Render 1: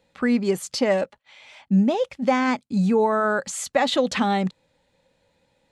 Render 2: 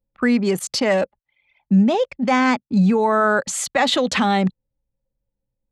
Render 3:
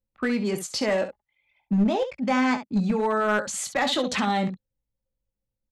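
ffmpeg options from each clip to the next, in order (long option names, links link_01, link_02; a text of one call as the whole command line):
ffmpeg -i in.wav -filter_complex "[0:a]anlmdn=1.58,acrossover=split=170|910|5500[link_01][link_02][link_03][link_04];[link_02]alimiter=limit=-19.5dB:level=0:latency=1[link_05];[link_01][link_05][link_03][link_04]amix=inputs=4:normalize=0,volume=5.5dB" out.wav
ffmpeg -i in.wav -af "aecho=1:1:19|67:0.398|0.299,aeval=exprs='clip(val(0),-1,0.251)':channel_layout=same,volume=-6.5dB" out.wav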